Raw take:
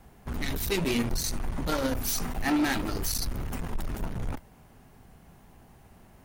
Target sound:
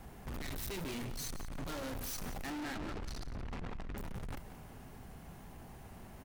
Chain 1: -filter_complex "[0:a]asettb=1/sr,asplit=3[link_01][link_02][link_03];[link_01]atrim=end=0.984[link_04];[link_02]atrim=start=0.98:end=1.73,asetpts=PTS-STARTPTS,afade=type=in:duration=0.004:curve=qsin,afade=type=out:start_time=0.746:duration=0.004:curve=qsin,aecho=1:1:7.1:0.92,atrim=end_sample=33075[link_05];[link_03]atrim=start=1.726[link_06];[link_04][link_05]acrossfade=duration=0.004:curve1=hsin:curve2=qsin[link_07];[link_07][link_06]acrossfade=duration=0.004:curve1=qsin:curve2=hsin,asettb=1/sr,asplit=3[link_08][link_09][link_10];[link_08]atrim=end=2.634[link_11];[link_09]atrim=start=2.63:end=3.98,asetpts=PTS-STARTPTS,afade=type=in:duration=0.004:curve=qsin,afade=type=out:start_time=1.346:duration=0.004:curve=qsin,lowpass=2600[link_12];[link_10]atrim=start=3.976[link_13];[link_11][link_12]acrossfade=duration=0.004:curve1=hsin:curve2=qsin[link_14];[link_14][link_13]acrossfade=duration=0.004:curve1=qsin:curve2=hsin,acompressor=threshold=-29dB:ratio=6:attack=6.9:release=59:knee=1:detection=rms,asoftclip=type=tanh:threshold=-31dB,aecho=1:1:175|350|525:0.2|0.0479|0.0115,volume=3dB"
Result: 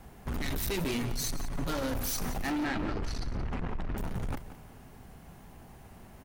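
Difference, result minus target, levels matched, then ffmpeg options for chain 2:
soft clipping: distortion −9 dB
-filter_complex "[0:a]asettb=1/sr,asplit=3[link_01][link_02][link_03];[link_01]atrim=end=0.984[link_04];[link_02]atrim=start=0.98:end=1.73,asetpts=PTS-STARTPTS,afade=type=in:duration=0.004:curve=qsin,afade=type=out:start_time=0.746:duration=0.004:curve=qsin,aecho=1:1:7.1:0.92,atrim=end_sample=33075[link_05];[link_03]atrim=start=1.726[link_06];[link_04][link_05]acrossfade=duration=0.004:curve1=hsin:curve2=qsin[link_07];[link_07][link_06]acrossfade=duration=0.004:curve1=qsin:curve2=hsin,asettb=1/sr,asplit=3[link_08][link_09][link_10];[link_08]atrim=end=2.634[link_11];[link_09]atrim=start=2.63:end=3.98,asetpts=PTS-STARTPTS,afade=type=in:duration=0.004:curve=qsin,afade=type=out:start_time=1.346:duration=0.004:curve=qsin,lowpass=2600[link_12];[link_10]atrim=start=3.976[link_13];[link_11][link_12]acrossfade=duration=0.004:curve1=hsin:curve2=qsin[link_14];[link_14][link_13]acrossfade=duration=0.004:curve1=qsin:curve2=hsin,acompressor=threshold=-29dB:ratio=6:attack=6.9:release=59:knee=1:detection=rms,asoftclip=type=tanh:threshold=-42.5dB,aecho=1:1:175|350|525:0.2|0.0479|0.0115,volume=3dB"

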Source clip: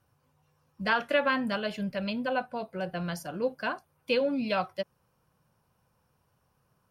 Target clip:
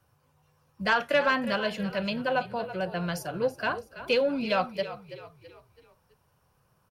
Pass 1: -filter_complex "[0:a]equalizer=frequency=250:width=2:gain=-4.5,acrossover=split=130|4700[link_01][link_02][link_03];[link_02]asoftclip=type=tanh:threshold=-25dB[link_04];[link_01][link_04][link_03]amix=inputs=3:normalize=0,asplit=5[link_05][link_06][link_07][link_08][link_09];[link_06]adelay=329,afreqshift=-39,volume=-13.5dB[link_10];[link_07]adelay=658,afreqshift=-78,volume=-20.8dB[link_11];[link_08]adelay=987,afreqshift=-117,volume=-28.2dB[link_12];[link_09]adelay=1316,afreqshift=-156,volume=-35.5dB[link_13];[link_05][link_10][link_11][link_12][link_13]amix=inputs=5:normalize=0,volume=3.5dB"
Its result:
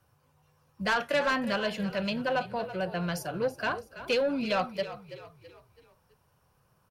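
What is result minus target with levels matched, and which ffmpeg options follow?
soft clipping: distortion +9 dB
-filter_complex "[0:a]equalizer=frequency=250:width=2:gain=-4.5,acrossover=split=130|4700[link_01][link_02][link_03];[link_02]asoftclip=type=tanh:threshold=-17.5dB[link_04];[link_01][link_04][link_03]amix=inputs=3:normalize=0,asplit=5[link_05][link_06][link_07][link_08][link_09];[link_06]adelay=329,afreqshift=-39,volume=-13.5dB[link_10];[link_07]adelay=658,afreqshift=-78,volume=-20.8dB[link_11];[link_08]adelay=987,afreqshift=-117,volume=-28.2dB[link_12];[link_09]adelay=1316,afreqshift=-156,volume=-35.5dB[link_13];[link_05][link_10][link_11][link_12][link_13]amix=inputs=5:normalize=0,volume=3.5dB"

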